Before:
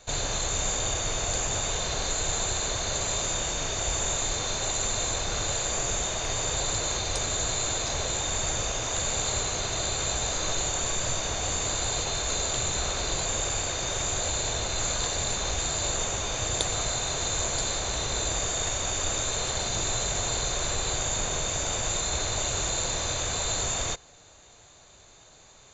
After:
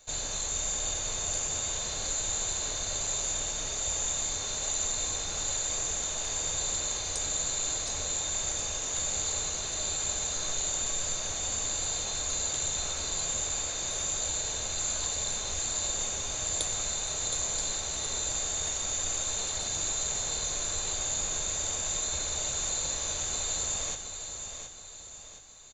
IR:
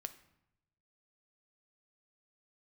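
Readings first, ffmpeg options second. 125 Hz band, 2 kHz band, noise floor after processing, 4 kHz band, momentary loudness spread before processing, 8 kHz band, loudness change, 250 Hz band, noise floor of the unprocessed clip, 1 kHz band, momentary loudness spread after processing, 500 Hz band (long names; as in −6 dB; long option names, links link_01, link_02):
−9.5 dB, −7.0 dB, −41 dBFS, −4.5 dB, 1 LU, −0.5 dB, −2.5 dB, −8.5 dB, −53 dBFS, −8.5 dB, 2 LU, −8.5 dB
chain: -filter_complex "[0:a]aemphasis=mode=production:type=50fm,aecho=1:1:719|1438|2157|2876|3595:0.398|0.175|0.0771|0.0339|0.0149[link_01];[1:a]atrim=start_sample=2205,asetrate=66150,aresample=44100[link_02];[link_01][link_02]afir=irnorm=-1:irlink=0,volume=-2dB"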